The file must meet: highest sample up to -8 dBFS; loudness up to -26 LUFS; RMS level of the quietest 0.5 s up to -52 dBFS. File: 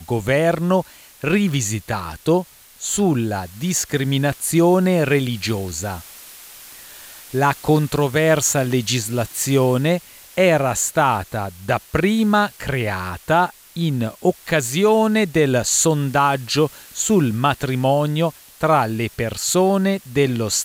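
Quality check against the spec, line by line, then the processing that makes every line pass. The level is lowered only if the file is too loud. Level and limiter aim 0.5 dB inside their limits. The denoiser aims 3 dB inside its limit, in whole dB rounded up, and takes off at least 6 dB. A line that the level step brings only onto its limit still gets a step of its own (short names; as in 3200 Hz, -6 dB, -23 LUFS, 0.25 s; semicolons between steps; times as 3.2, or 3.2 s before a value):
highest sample -5.0 dBFS: fail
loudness -19.0 LUFS: fail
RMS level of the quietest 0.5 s -41 dBFS: fail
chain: denoiser 7 dB, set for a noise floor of -41 dBFS; gain -7.5 dB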